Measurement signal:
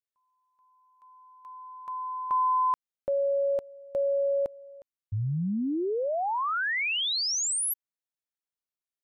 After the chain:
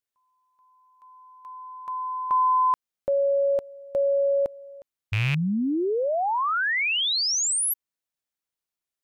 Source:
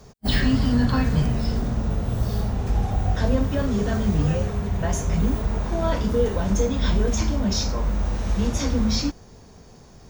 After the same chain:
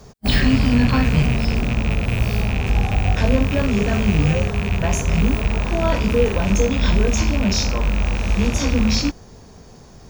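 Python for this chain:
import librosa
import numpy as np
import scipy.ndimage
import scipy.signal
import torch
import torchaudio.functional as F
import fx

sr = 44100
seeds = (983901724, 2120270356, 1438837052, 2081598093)

y = fx.rattle_buzz(x, sr, strikes_db=-26.0, level_db=-20.0)
y = y * librosa.db_to_amplitude(4.0)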